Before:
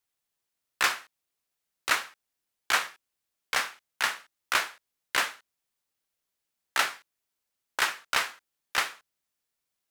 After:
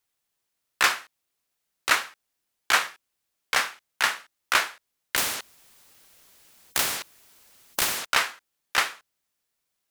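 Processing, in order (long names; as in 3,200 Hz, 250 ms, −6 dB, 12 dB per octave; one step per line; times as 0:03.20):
0:05.16–0:08.06: every bin compressed towards the loudest bin 4 to 1
level +4 dB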